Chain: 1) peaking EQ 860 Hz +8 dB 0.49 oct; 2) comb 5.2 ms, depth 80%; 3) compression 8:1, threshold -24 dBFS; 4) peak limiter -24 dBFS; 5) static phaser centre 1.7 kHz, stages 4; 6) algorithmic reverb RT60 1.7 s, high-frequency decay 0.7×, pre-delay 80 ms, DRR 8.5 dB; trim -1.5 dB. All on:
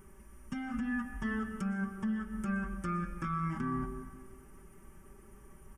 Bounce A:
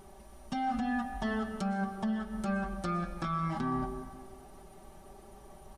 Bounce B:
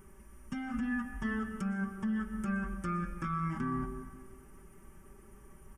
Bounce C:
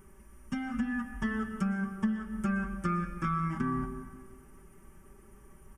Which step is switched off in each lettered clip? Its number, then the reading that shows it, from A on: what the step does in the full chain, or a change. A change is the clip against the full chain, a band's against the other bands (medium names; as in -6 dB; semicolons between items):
5, 500 Hz band +5.5 dB; 3, mean gain reduction 2.0 dB; 4, crest factor change +1.5 dB